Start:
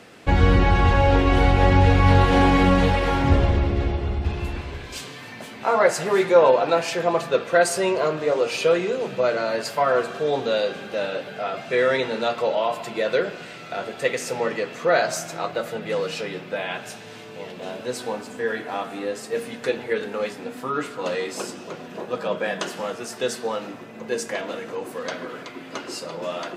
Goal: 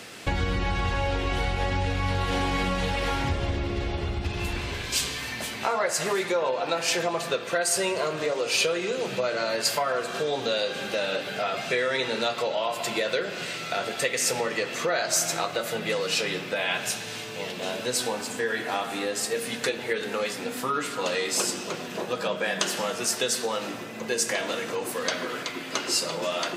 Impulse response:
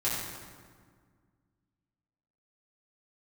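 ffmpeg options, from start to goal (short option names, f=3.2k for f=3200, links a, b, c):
-filter_complex "[0:a]asplit=2[a][b];[1:a]atrim=start_sample=2205[c];[b][c]afir=irnorm=-1:irlink=0,volume=-21.5dB[d];[a][d]amix=inputs=2:normalize=0,acompressor=threshold=-26dB:ratio=4,highshelf=f=2.3k:g=11.5"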